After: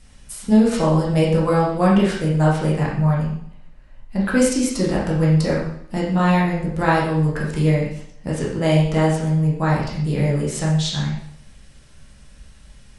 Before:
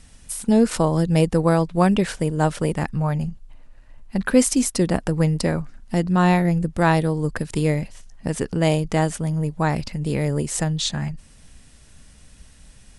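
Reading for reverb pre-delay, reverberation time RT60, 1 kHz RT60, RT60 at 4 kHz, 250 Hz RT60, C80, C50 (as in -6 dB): 5 ms, 0.65 s, 0.70 s, 0.65 s, 0.70 s, 6.5 dB, 3.0 dB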